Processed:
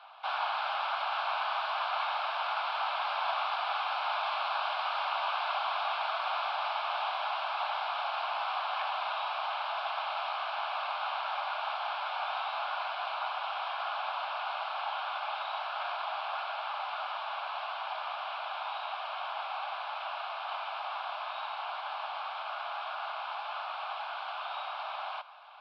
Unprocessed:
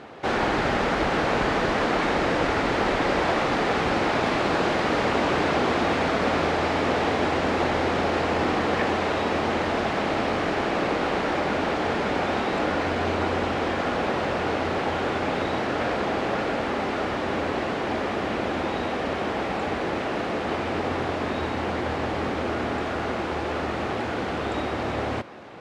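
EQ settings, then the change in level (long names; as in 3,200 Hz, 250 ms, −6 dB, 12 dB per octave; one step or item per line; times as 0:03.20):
Savitzky-Golay smoothing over 15 samples
Butterworth high-pass 560 Hz 72 dB per octave
phaser with its sweep stopped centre 1,900 Hz, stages 6
−3.5 dB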